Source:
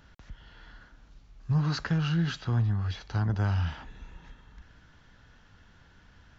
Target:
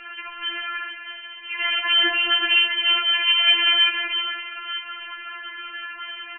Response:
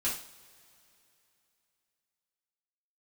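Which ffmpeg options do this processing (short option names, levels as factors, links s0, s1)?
-filter_complex "[0:a]lowshelf=f=64:g=12,asplit=2[s0][s1];[s1]adelay=379,volume=0.355,highshelf=f=4000:g=-8.53[s2];[s0][s2]amix=inputs=2:normalize=0,asplit=2[s3][s4];[s4]highpass=f=720:p=1,volume=35.5,asoftclip=type=tanh:threshold=0.224[s5];[s3][s5]amix=inputs=2:normalize=0,lowpass=f=1200:p=1,volume=0.501,asplit=2[s6][s7];[s7]asplit=8[s8][s9][s10][s11][s12][s13][s14][s15];[s8]adelay=109,afreqshift=-51,volume=0.299[s16];[s9]adelay=218,afreqshift=-102,volume=0.188[s17];[s10]adelay=327,afreqshift=-153,volume=0.119[s18];[s11]adelay=436,afreqshift=-204,volume=0.075[s19];[s12]adelay=545,afreqshift=-255,volume=0.0468[s20];[s13]adelay=654,afreqshift=-306,volume=0.0295[s21];[s14]adelay=763,afreqshift=-357,volume=0.0186[s22];[s15]adelay=872,afreqshift=-408,volume=0.0117[s23];[s16][s17][s18][s19][s20][s21][s22][s23]amix=inputs=8:normalize=0[s24];[s6][s24]amix=inputs=2:normalize=0,lowpass=f=2600:t=q:w=0.5098,lowpass=f=2600:t=q:w=0.6013,lowpass=f=2600:t=q:w=0.9,lowpass=f=2600:t=q:w=2.563,afreqshift=-3100,afftfilt=real='re*4*eq(mod(b,16),0)':imag='im*4*eq(mod(b,16),0)':win_size=2048:overlap=0.75,volume=2.37"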